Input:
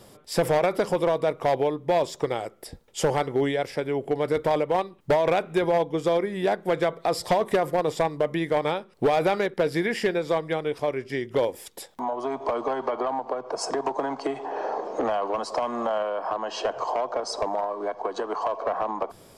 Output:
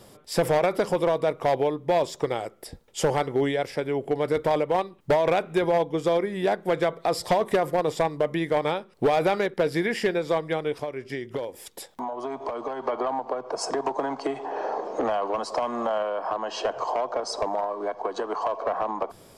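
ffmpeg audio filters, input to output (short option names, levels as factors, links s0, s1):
-filter_complex "[0:a]asettb=1/sr,asplit=3[s0][s1][s2];[s0]atrim=end=10.814[s3];[s1]atrim=start=10.81:end=12.86,asetpts=PTS-STARTPTS,afade=t=in:d=0.004:c=qsin,afade=t=out:st=2.046:d=0.004:c=qsin,acompressor=threshold=0.0398:ratio=6[s4];[s2]atrim=start=12.856[s5];[s3][s4]acrossfade=d=0.004:c1=hsin:c2=qsin[s6];[s6][s5]acrossfade=d=0.004:c1=qsin:c2=hsin"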